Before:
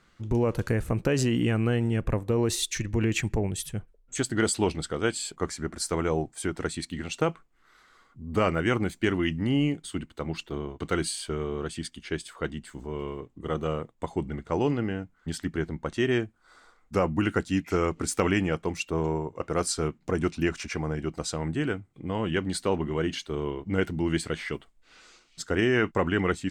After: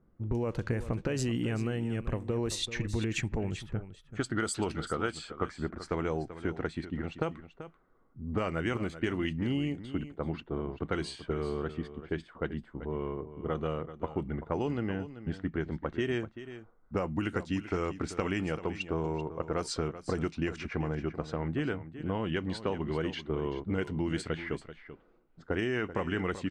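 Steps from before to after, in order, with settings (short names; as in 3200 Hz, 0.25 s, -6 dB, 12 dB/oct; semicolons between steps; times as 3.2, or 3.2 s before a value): low-pass opened by the level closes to 490 Hz, open at -20.5 dBFS; 3.38–5.52 bell 1300 Hz +9.5 dB 0.32 oct; compressor, threshold -28 dBFS, peak gain reduction 10 dB; echo 0.386 s -13 dB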